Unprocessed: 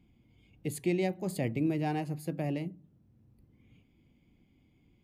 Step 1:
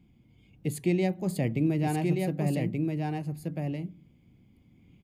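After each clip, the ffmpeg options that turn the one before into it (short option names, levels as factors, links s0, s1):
-filter_complex "[0:a]equalizer=f=160:w=1.4:g=5,asplit=2[s0][s1];[s1]aecho=0:1:1179:0.668[s2];[s0][s2]amix=inputs=2:normalize=0,volume=1.19"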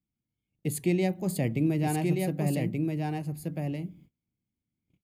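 -af "highshelf=f=8100:g=8.5,agate=range=0.0447:threshold=0.00224:ratio=16:detection=peak"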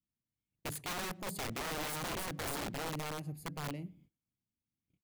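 -filter_complex "[0:a]aeval=exprs='(mod(18.8*val(0)+1,2)-1)/18.8':c=same,asplit=2[s0][s1];[s1]adelay=120,highpass=300,lowpass=3400,asoftclip=type=hard:threshold=0.0188,volume=0.0631[s2];[s0][s2]amix=inputs=2:normalize=0,volume=0.398"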